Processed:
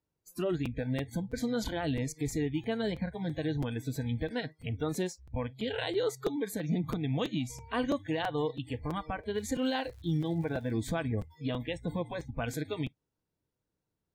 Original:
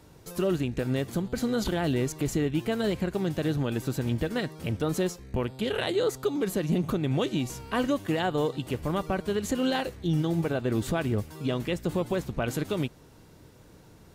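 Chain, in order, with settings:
noise reduction from a noise print of the clip's start 29 dB
0:09.34–0:10.71: surface crackle 290 per second −46 dBFS
regular buffer underruns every 0.33 s, samples 256, repeat, from 0:00.32
level −4 dB

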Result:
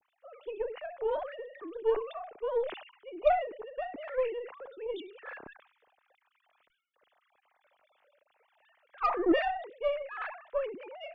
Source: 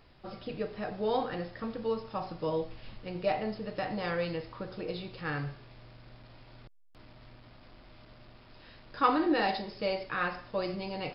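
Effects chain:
three sine waves on the formant tracks
low-shelf EQ 320 Hz +7.5 dB
harmonic generator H 6 −23 dB, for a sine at −10 dBFS
level that may fall only so fast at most 100 dB per second
level −3.5 dB

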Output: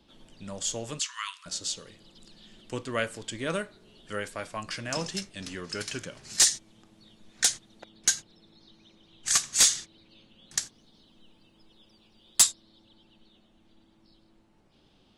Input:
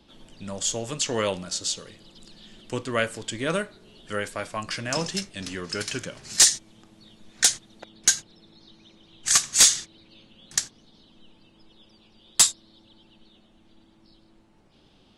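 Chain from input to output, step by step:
0:00.99–0:01.46: linear-phase brick-wall high-pass 950 Hz
0:10.61–0:12.44: high-shelf EQ 11,000 Hz +9.5 dB
level −4.5 dB

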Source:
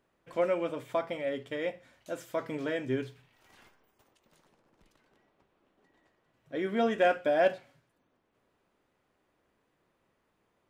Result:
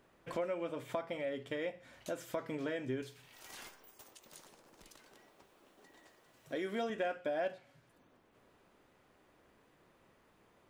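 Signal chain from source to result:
0:03.02–0:06.90: bass and treble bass −6 dB, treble +10 dB
downward compressor 3 to 1, threshold −47 dBFS, peak gain reduction 19.5 dB
level +7 dB

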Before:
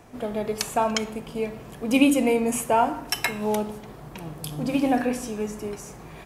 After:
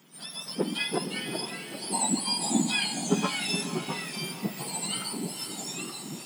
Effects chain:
frequency axis turned over on the octave scale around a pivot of 1,500 Hz
delay with pitch and tempo change per echo 260 ms, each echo −2 semitones, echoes 2, each echo −6 dB
feedback delay with all-pass diffusion 491 ms, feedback 40%, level −8.5 dB
level −4.5 dB

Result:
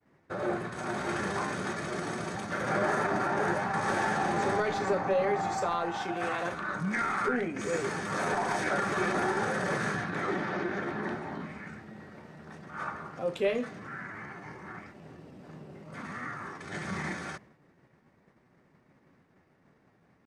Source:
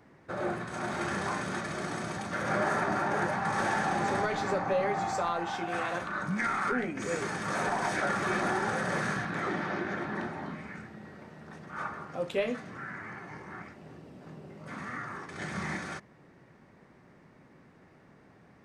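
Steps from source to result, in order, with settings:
downward expander −51 dBFS
dynamic equaliser 420 Hz, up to +4 dB, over −46 dBFS, Q 2.9
tempo change 0.92×

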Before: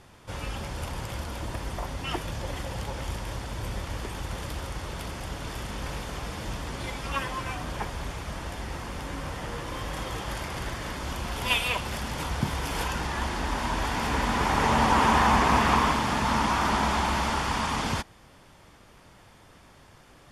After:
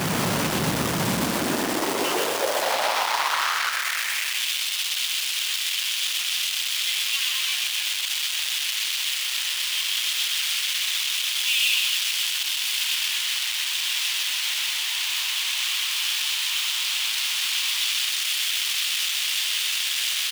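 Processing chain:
sign of each sample alone
0:02.61–0:03.70: high-frequency loss of the air 250 metres
in parallel at −4.5 dB: wrap-around overflow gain 30.5 dB
on the sum: high-pass filter sweep 160 Hz → 3,000 Hz, 0:01.11–0:04.51
echo with shifted repeats 125 ms, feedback 50%, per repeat +74 Hz, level −4 dB
feedback echo at a low word length 127 ms, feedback 35%, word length 9 bits, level −12.5 dB
level +8 dB

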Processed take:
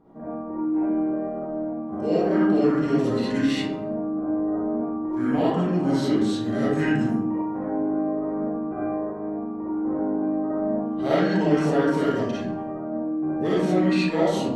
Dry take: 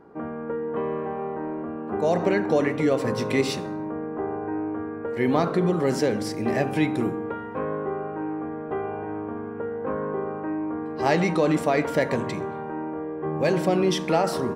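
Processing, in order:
formants moved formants −5 semitones
comb and all-pass reverb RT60 0.69 s, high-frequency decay 0.55×, pre-delay 15 ms, DRR −8 dB
level −7 dB

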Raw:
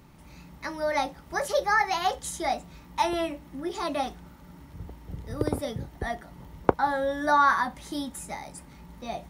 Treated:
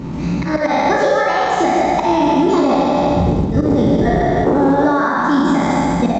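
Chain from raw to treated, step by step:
peak hold with a decay on every bin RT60 2.42 s
tempo change 1.5×
high-shelf EQ 6,000 Hz −3.5 dB
volume swells 267 ms
downward compressor 12 to 1, threshold −33 dBFS, peak gain reduction 19.5 dB
parametric band 240 Hz +14.5 dB 2.5 octaves
on a send: loudspeakers that aren't time-aligned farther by 20 metres −7 dB, 53 metres −6 dB
on the sum: boost into a limiter +19.5 dB
level −4.5 dB
A-law companding 128 kbit/s 16,000 Hz

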